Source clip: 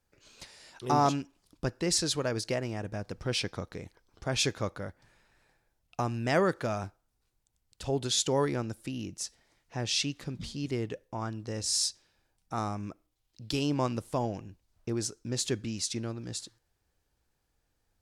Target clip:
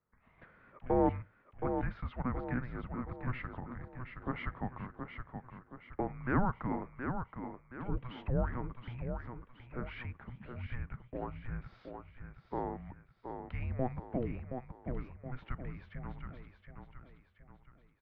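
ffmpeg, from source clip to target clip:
-filter_complex "[0:a]acrossover=split=310[a][b];[a]acompressor=threshold=-43dB:ratio=6[c];[b]aecho=1:1:722|1444|2166|2888|3610:0.473|0.203|0.0875|0.0376|0.0162[d];[c][d]amix=inputs=2:normalize=0,highpass=f=180:t=q:w=0.5412,highpass=f=180:t=q:w=1.307,lowpass=f=2.3k:t=q:w=0.5176,lowpass=f=2.3k:t=q:w=0.7071,lowpass=f=2.3k:t=q:w=1.932,afreqshift=-380,volume=-2dB"

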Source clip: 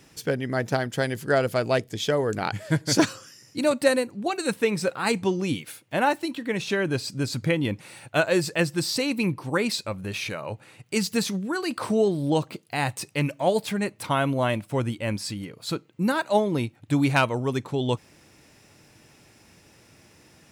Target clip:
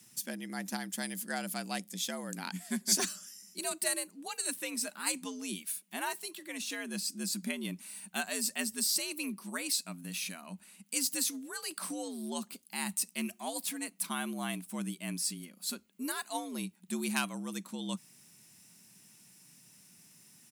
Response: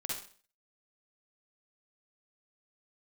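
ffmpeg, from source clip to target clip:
-af "equalizer=f=170:w=0.39:g=-8.5,afreqshift=77,firequalizer=gain_entry='entry(200,0);entry(450,-18);entry(820,-13);entry(9400,6)':delay=0.05:min_phase=1"

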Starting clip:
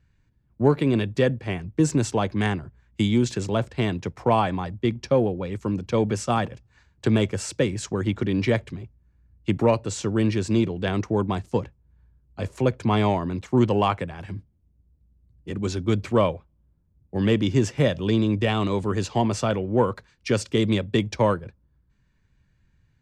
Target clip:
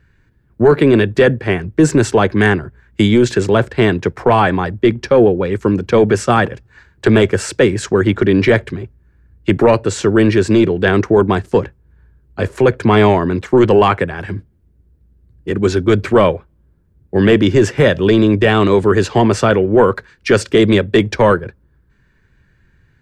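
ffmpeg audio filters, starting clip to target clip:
-af "equalizer=f=400:t=o:w=0.67:g=8,equalizer=f=1.6k:t=o:w=0.67:g=9,equalizer=f=6.3k:t=o:w=0.67:g=-3,apsyclip=12.5dB,volume=-3.5dB"

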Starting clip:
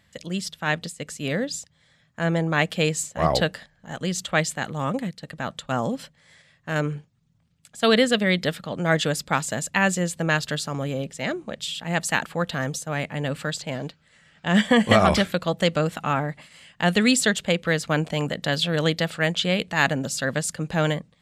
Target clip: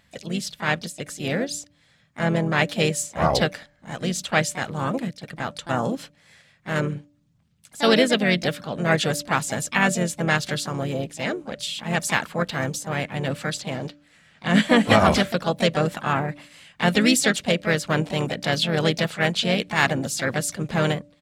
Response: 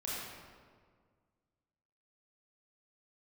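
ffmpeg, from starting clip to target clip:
-filter_complex "[0:a]asplit=4[a][b][c][d];[b]asetrate=35002,aresample=44100,atempo=1.25992,volume=-15dB[e];[c]asetrate=37084,aresample=44100,atempo=1.18921,volume=-15dB[f];[d]asetrate=55563,aresample=44100,atempo=0.793701,volume=-8dB[g];[a][e][f][g]amix=inputs=4:normalize=0,bandreject=f=291.9:t=h:w=4,bandreject=f=583.8:t=h:w=4"

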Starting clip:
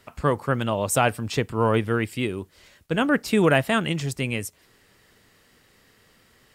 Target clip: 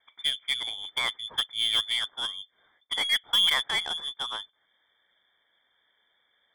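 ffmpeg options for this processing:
-af "asuperstop=centerf=780:order=20:qfactor=0.98,lowpass=f=3.1k:t=q:w=0.5098,lowpass=f=3.1k:t=q:w=0.6013,lowpass=f=3.1k:t=q:w=0.9,lowpass=f=3.1k:t=q:w=2.563,afreqshift=-3600,aeval=exprs='0.376*(cos(1*acos(clip(val(0)/0.376,-1,1)))-cos(1*PI/2))+0.00944*(cos(4*acos(clip(val(0)/0.376,-1,1)))-cos(4*PI/2))+0.0473*(cos(5*acos(clip(val(0)/0.376,-1,1)))-cos(5*PI/2))+0.0596*(cos(7*acos(clip(val(0)/0.376,-1,1)))-cos(7*PI/2))':c=same,volume=-4.5dB"

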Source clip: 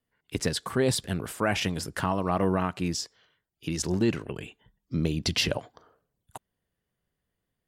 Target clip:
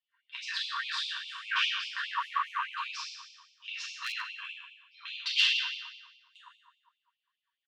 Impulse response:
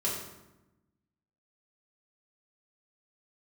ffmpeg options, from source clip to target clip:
-filter_complex "[0:a]highpass=f=230:w=0.5412,highpass=f=230:w=1.3066,equalizer=f=310:t=q:w=4:g=8,equalizer=f=540:t=q:w=4:g=-8,equalizer=f=870:t=q:w=4:g=9,equalizer=f=1.3k:t=q:w=4:g=-4,equalizer=f=2.1k:t=q:w=4:g=-10,lowpass=f=3.7k:w=0.5412,lowpass=f=3.7k:w=1.3066,asplit=2[a][b];[b]adelay=150,highpass=300,lowpass=3.4k,asoftclip=type=hard:threshold=-19.5dB,volume=-14dB[c];[a][c]amix=inputs=2:normalize=0[d];[1:a]atrim=start_sample=2205,asetrate=25578,aresample=44100[e];[d][e]afir=irnorm=-1:irlink=0,aeval=exprs='0.794*(cos(1*acos(clip(val(0)/0.794,-1,1)))-cos(1*PI/2))+0.0316*(cos(6*acos(clip(val(0)/0.794,-1,1)))-cos(6*PI/2))':c=same,afftfilt=real='re*gte(b*sr/1024,940*pow(2200/940,0.5+0.5*sin(2*PI*4.9*pts/sr)))':imag='im*gte(b*sr/1024,940*pow(2200/940,0.5+0.5*sin(2*PI*4.9*pts/sr)))':win_size=1024:overlap=0.75,volume=-2.5dB"

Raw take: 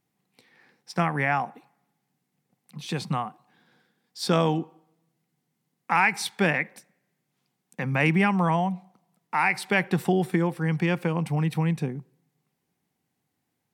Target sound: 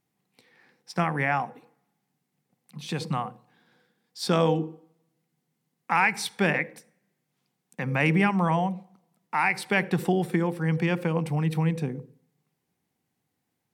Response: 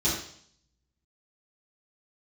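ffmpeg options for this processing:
-filter_complex "[0:a]asplit=2[a][b];[b]lowshelf=f=620:t=q:w=3:g=7[c];[1:a]atrim=start_sample=2205,asetrate=66150,aresample=44100,adelay=52[d];[c][d]afir=irnorm=-1:irlink=0,volume=-33dB[e];[a][e]amix=inputs=2:normalize=0,volume=-1dB"

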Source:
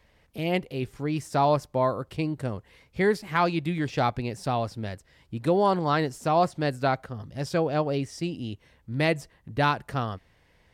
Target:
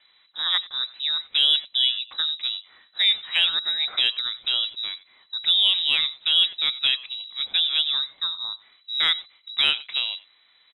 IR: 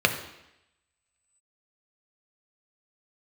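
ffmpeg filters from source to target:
-filter_complex "[0:a]asplit=2[a][b];[b]adelay=90,highpass=300,lowpass=3.4k,asoftclip=type=hard:threshold=-21dB,volume=-17dB[c];[a][c]amix=inputs=2:normalize=0,lowpass=f=3.4k:t=q:w=0.5098,lowpass=f=3.4k:t=q:w=0.6013,lowpass=f=3.4k:t=q:w=0.9,lowpass=f=3.4k:t=q:w=2.563,afreqshift=-4000,acontrast=23,volume=-2.5dB"

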